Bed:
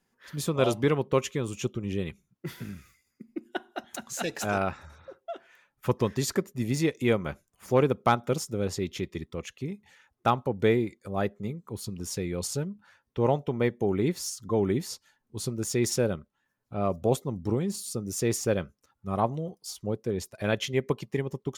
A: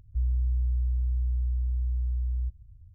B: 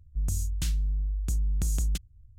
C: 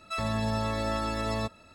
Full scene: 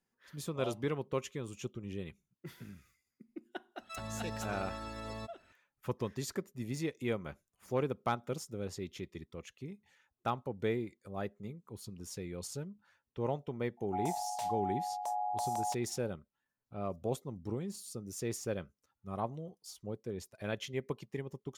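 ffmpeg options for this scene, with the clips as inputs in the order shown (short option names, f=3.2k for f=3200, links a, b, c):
-filter_complex "[0:a]volume=-10.5dB[a];[2:a]aeval=exprs='val(0)*sin(2*PI*780*n/s)':c=same[b];[3:a]atrim=end=1.74,asetpts=PTS-STARTPTS,volume=-12.5dB,afade=t=in:d=0.004:c=hsin,afade=t=out:st=1.736:d=0.004:c=hsin,adelay=3790[c];[b]atrim=end=2.38,asetpts=PTS-STARTPTS,volume=-7dB,afade=t=in:d=0.004:c=hsin,afade=t=out:st=2.376:d=0.004:c=hsin,adelay=13770[d];[a][c][d]amix=inputs=3:normalize=0"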